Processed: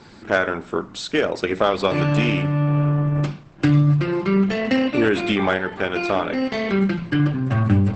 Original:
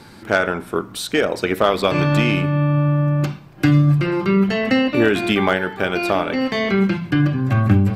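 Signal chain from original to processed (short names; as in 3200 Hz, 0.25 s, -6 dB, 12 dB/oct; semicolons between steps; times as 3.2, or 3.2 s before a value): notches 60/120/180 Hz; 4.51–5.12 high shelf 7400 Hz +3 dB; gain -1.5 dB; Opus 12 kbps 48000 Hz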